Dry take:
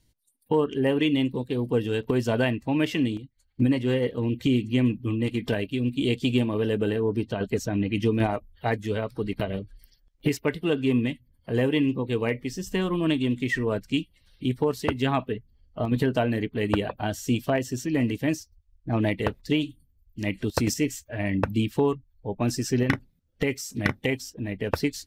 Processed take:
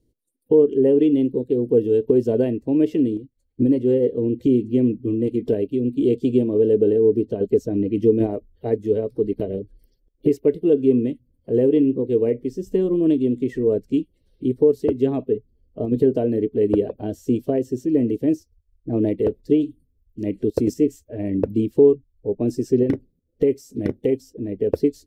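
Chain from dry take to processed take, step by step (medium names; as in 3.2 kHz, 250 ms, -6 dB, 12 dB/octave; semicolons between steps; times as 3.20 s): FFT filter 160 Hz 0 dB, 430 Hz +13 dB, 830 Hz -9 dB, 1.3 kHz -16 dB, 10 kHz -8 dB; trim -1.5 dB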